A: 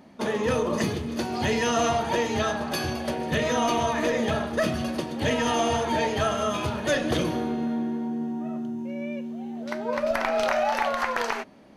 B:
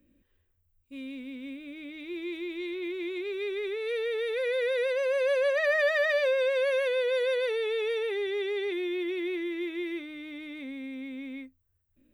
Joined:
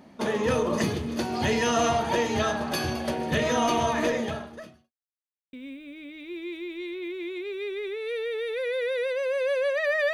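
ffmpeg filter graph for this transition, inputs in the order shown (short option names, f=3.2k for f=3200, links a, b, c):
-filter_complex "[0:a]apad=whole_dur=10.13,atrim=end=10.13,asplit=2[a][b];[a]atrim=end=4.92,asetpts=PTS-STARTPTS,afade=t=out:st=4.06:d=0.86:c=qua[c];[b]atrim=start=4.92:end=5.53,asetpts=PTS-STARTPTS,volume=0[d];[1:a]atrim=start=1.33:end=5.93,asetpts=PTS-STARTPTS,afade=t=in:d=0.004:c=hsin[e];[c][d][e]concat=n=3:v=0:a=1"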